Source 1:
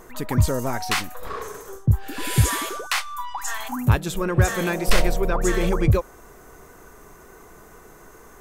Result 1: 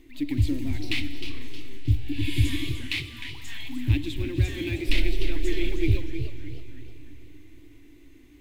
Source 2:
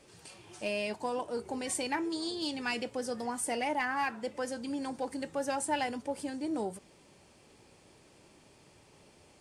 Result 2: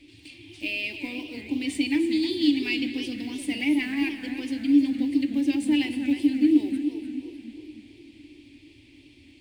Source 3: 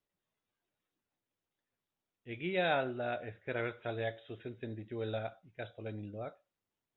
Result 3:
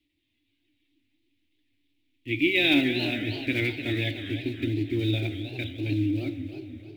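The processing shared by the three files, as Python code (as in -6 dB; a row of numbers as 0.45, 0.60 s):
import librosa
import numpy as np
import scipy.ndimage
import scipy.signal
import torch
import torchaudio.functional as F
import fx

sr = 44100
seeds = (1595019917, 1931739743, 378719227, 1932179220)

y = fx.block_float(x, sr, bits=5)
y = fx.curve_eq(y, sr, hz=(110.0, 200.0, 290.0, 430.0, 970.0, 1400.0, 2200.0, 3800.0, 6100.0), db=(0, -21, 13, -18, -22, -25, 2, 1, -14))
y = fx.rev_schroeder(y, sr, rt60_s=3.9, comb_ms=38, drr_db=11.0)
y = fx.echo_warbled(y, sr, ms=306, feedback_pct=39, rate_hz=2.8, cents=218, wet_db=-10)
y = y * 10.0 ** (-9 / 20.0) / np.max(np.abs(y))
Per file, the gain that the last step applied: -3.5, +7.5, +15.5 dB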